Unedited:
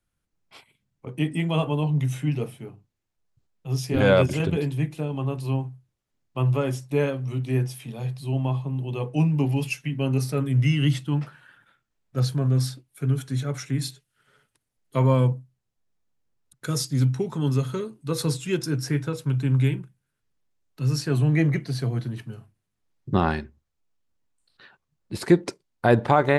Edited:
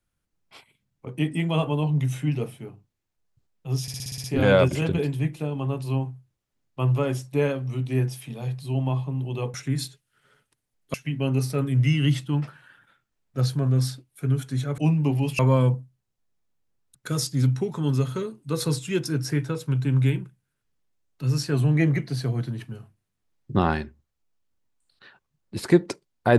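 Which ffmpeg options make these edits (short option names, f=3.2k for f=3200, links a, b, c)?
-filter_complex "[0:a]asplit=12[a][b][c][d][e][f][g][h][i][j][k][l];[a]atrim=end=3.882[m];[b]atrim=start=3.818:end=3.882[n];[c]atrim=start=3.818:end=3.882[o];[d]atrim=start=3.818:end=3.882[p];[e]atrim=start=3.818:end=3.882[q];[f]atrim=start=3.818:end=3.882[r];[g]atrim=start=3.818:end=3.882[s];[h]atrim=start=3.818:end=9.122[t];[i]atrim=start=13.568:end=14.972[u];[j]atrim=start=9.728:end=13.572[v];[k]atrim=start=9.118:end=9.732[w];[l]atrim=start=14.968[x];[m][n]acrossfade=d=0.004:c1=hsin:c2=hsin[y];[y][o]acrossfade=d=0.004:c1=hsin:c2=hsin[z];[z][p]acrossfade=d=0.004:c1=hsin:c2=hsin[aa];[aa][q]acrossfade=d=0.004:c1=hsin:c2=hsin[ab];[ab][r]acrossfade=d=0.004:c1=hsin:c2=hsin[ac];[ac][s]acrossfade=d=0.004:c1=hsin:c2=hsin[ad];[ad][t]acrossfade=d=0.004:c1=hsin:c2=hsin[ae];[ae][u]acrossfade=d=0.004:c1=hsin:c2=hsin[af];[af][v]acrossfade=d=0.004:c1=hsin:c2=hsin[ag];[ag][w]acrossfade=d=0.004:c1=hsin:c2=hsin[ah];[ah][x]acrossfade=d=0.004:c1=hsin:c2=hsin"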